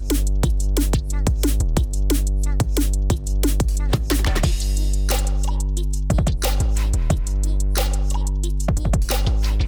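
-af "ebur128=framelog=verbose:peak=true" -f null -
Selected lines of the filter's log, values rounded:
Integrated loudness:
  I:         -21.8 LUFS
  Threshold: -31.8 LUFS
Loudness range:
  LRA:         0.7 LU
  Threshold: -41.8 LUFS
  LRA low:   -22.2 LUFS
  LRA high:  -21.4 LUFS
True peak:
  Peak:       -7.8 dBFS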